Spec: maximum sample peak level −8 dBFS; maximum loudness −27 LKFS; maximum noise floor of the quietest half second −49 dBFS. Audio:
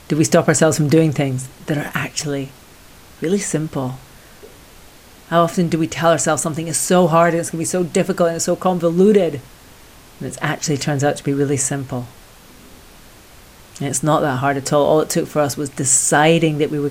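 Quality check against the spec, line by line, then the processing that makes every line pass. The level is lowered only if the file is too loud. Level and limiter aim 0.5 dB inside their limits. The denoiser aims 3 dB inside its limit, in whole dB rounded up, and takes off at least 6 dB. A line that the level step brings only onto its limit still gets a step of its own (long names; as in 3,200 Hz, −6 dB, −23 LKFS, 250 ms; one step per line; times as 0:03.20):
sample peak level −1.5 dBFS: out of spec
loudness −17.5 LKFS: out of spec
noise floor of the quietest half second −43 dBFS: out of spec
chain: level −10 dB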